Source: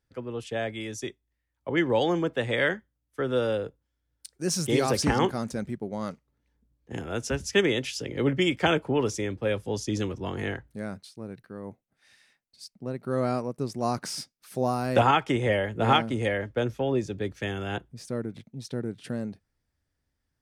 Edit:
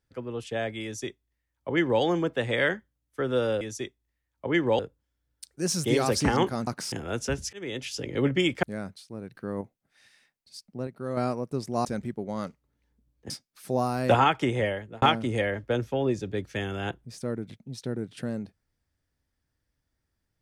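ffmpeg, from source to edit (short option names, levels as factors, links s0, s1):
-filter_complex "[0:a]asplit=14[s0][s1][s2][s3][s4][s5][s6][s7][s8][s9][s10][s11][s12][s13];[s0]atrim=end=3.612[s14];[s1]atrim=start=0.838:end=2.022[s15];[s2]atrim=start=3.608:end=5.492[s16];[s3]atrim=start=13.918:end=14.172[s17];[s4]atrim=start=6.938:end=7.55,asetpts=PTS-STARTPTS,afade=t=out:st=0.608:d=0.004:c=hsin[s18];[s5]atrim=start=7.55:end=8.652,asetpts=PTS-STARTPTS,afade=t=in:d=0.45[s19];[s6]atrim=start=10.698:end=11.422[s20];[s7]atrim=start=11.418:end=11.682,asetpts=PTS-STARTPTS,volume=2.11[s21];[s8]atrim=start=11.678:end=12.942[s22];[s9]atrim=start=12.938:end=13.242,asetpts=PTS-STARTPTS,volume=0.531[s23];[s10]atrim=start=13.238:end=13.922[s24];[s11]atrim=start=5.488:end=6.942[s25];[s12]atrim=start=14.168:end=15.89,asetpts=PTS-STARTPTS,afade=t=out:st=1.042:d=0.68:c=qsin[s26];[s13]atrim=start=15.89,asetpts=PTS-STARTPTS,afade=t=in:d=0.004:c=hsin[s27];[s14][s15]acrossfade=d=0.004:c1=hsin:c2=hsin[s28];[s28][s16]acrossfade=d=0.004:c1=hsin:c2=hsin[s29];[s29][s17]acrossfade=d=0.004:c1=hsin:c2=hsin[s30];[s18][s19]concat=n=2:v=0:a=1[s31];[s30][s31]acrossfade=d=0.004:c1=hsin:c2=hsin[s32];[s32][s20]acrossfade=d=0.004:c1=hsin:c2=hsin[s33];[s33][s21]acrossfade=d=0.004:c1=hsin:c2=hsin[s34];[s34][s22]acrossfade=d=0.004:c1=hsin:c2=hsin[s35];[s35][s23]acrossfade=d=0.004:c1=hsin:c2=hsin[s36];[s36][s24]acrossfade=d=0.004:c1=hsin:c2=hsin[s37];[s37][s25]acrossfade=d=0.004:c1=hsin:c2=hsin[s38];[s26][s27]concat=n=2:v=0:a=1[s39];[s38][s39]acrossfade=d=0.004:c1=hsin:c2=hsin"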